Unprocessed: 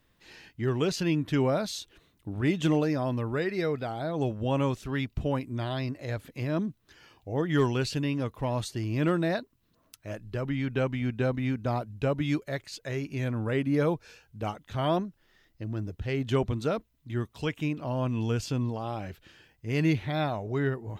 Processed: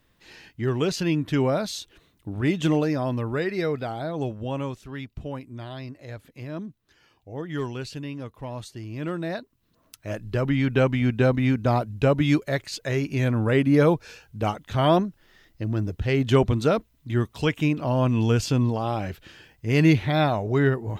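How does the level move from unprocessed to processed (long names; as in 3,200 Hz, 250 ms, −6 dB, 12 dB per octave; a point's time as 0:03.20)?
0:03.92 +3 dB
0:04.85 −5 dB
0:09.01 −5 dB
0:10.25 +7.5 dB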